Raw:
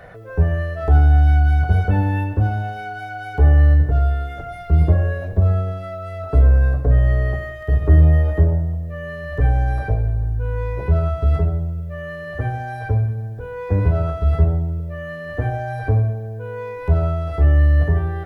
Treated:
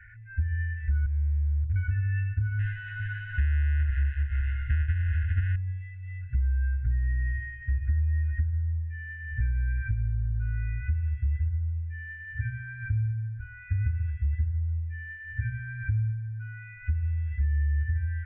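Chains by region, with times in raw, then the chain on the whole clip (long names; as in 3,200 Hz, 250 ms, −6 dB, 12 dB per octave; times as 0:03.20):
0:01.06–0:01.76: Butterworth low-pass 640 Hz 96 dB per octave + hard clipping −15.5 dBFS
0:02.59–0:05.56: each half-wave held at its own peak + Butterworth band-reject 2,300 Hz, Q 4.8 + single-tap delay 406 ms −7.5 dB
whole clip: elliptic low-pass filter 2,400 Hz, stop band 50 dB; brick-wall band-stop 120–1,400 Hz; downward compressor, threshold −20 dBFS; level −3.5 dB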